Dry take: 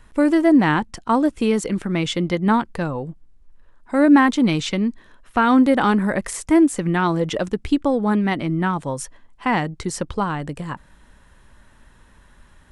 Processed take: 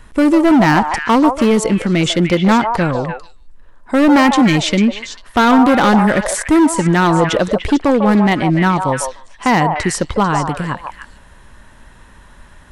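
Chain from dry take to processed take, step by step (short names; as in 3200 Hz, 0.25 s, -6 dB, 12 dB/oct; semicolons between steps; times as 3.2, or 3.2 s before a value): overloaded stage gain 15.5 dB; delay with a stepping band-pass 0.148 s, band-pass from 790 Hz, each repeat 1.4 oct, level -1.5 dB; gain +8 dB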